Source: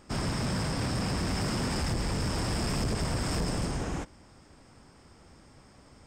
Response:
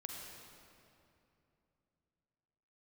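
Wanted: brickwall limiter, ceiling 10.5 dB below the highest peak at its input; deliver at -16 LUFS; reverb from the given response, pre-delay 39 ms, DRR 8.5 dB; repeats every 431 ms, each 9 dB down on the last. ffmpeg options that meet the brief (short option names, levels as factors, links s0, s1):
-filter_complex "[0:a]alimiter=level_in=3.98:limit=0.0631:level=0:latency=1,volume=0.251,aecho=1:1:431|862|1293|1724:0.355|0.124|0.0435|0.0152,asplit=2[s0][s1];[1:a]atrim=start_sample=2205,adelay=39[s2];[s1][s2]afir=irnorm=-1:irlink=0,volume=0.473[s3];[s0][s3]amix=inputs=2:normalize=0,volume=16.8"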